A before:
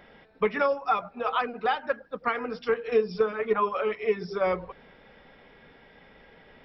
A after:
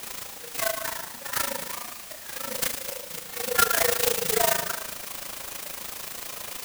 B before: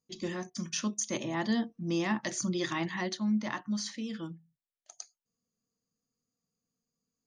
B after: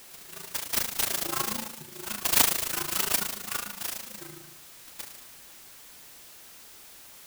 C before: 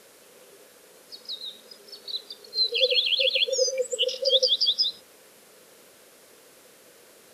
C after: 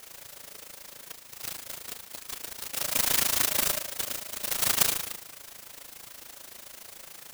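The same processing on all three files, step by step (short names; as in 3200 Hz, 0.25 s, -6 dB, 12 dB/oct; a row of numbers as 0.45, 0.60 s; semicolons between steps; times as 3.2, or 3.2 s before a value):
inharmonic rescaling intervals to 121%; compressor 8:1, threshold -36 dBFS; auto swell 0.461 s; high shelf 5900 Hz +10.5 dB; non-linear reverb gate 0.36 s falling, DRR 1 dB; AM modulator 27 Hz, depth 80%; tilt shelf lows -10 dB, about 690 Hz; notches 60/120/180/240 Hz; whine 5300 Hz -55 dBFS; clock jitter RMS 0.1 ms; match loudness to -27 LUFS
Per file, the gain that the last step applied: +15.5, +9.0, +2.0 dB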